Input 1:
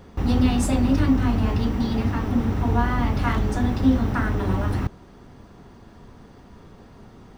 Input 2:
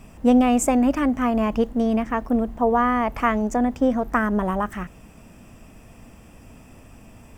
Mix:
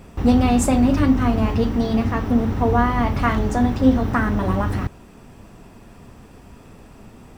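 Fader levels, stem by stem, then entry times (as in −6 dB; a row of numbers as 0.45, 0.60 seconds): +0.5, −2.0 decibels; 0.00, 0.00 seconds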